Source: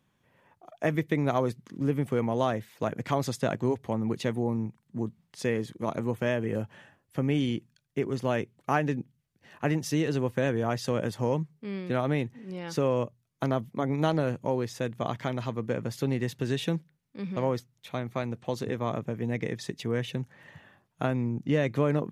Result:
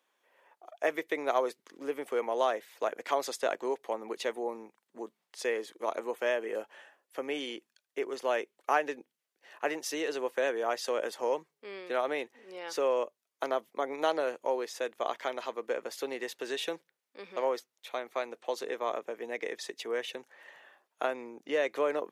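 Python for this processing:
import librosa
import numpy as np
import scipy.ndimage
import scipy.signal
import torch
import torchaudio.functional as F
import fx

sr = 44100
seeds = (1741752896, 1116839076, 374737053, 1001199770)

y = scipy.signal.sosfilt(scipy.signal.butter(4, 410.0, 'highpass', fs=sr, output='sos'), x)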